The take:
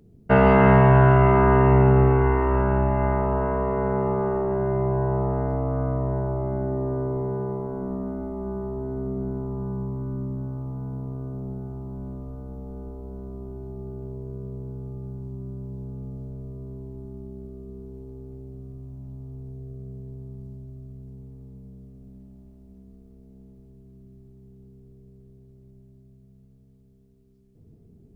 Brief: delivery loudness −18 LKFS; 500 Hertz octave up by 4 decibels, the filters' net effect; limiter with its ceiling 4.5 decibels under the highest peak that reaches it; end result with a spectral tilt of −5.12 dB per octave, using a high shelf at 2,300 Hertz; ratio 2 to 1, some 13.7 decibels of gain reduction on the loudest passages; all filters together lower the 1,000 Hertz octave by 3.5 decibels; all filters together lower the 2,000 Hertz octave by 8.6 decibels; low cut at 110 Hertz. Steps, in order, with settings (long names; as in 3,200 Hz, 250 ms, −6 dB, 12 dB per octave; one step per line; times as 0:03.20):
high-pass filter 110 Hz
parametric band 500 Hz +7.5 dB
parametric band 1,000 Hz −5 dB
parametric band 2,000 Hz −8.5 dB
high-shelf EQ 2,300 Hz −4 dB
downward compressor 2 to 1, threshold −37 dBFS
level +17.5 dB
brickwall limiter −4.5 dBFS